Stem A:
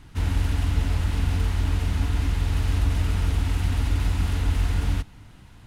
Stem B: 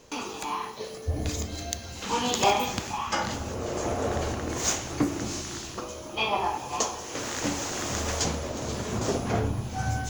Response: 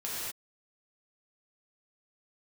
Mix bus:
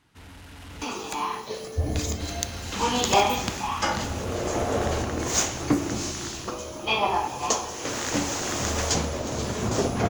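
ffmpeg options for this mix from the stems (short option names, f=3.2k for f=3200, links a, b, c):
-filter_complex "[0:a]highpass=f=330:p=1,asoftclip=type=tanh:threshold=-31.5dB,volume=-9.5dB,asplit=3[a][b][c];[a]atrim=end=0.84,asetpts=PTS-STARTPTS,afade=t=out:st=0.836:d=0.004:c=hsin[d];[b]atrim=start=0.84:end=2.2,asetpts=PTS-STARTPTS,volume=0[e];[c]atrim=start=2.2,asetpts=PTS-STARTPTS,afade=t=in:d=0.004:c=hsin[f];[d][e][f]concat=n=3:v=0:a=1[g];[1:a]adelay=700,volume=-4.5dB[h];[g][h]amix=inputs=2:normalize=0,dynaudnorm=f=480:g=3:m=7.5dB"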